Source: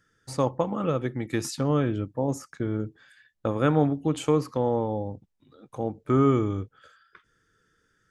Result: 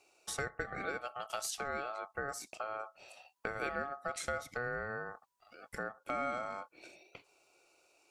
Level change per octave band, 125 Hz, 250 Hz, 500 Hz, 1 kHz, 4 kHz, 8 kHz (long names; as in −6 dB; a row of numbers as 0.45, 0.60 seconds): −25.0, −24.0, −14.5, −7.5, −5.5, −2.5 decibels